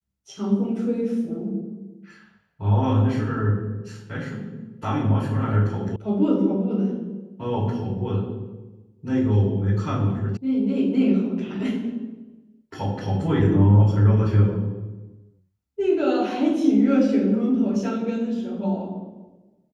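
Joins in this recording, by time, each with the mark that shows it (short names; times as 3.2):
5.96 sound cut off
10.37 sound cut off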